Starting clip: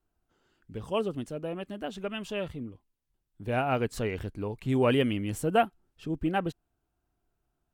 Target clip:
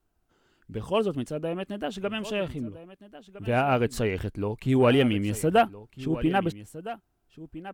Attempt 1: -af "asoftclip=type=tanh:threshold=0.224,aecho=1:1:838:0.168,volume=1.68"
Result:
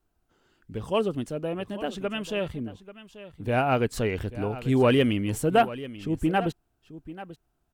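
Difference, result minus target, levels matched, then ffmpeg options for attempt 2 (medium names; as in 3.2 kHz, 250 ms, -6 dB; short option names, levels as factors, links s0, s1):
echo 472 ms early
-af "asoftclip=type=tanh:threshold=0.224,aecho=1:1:1310:0.168,volume=1.68"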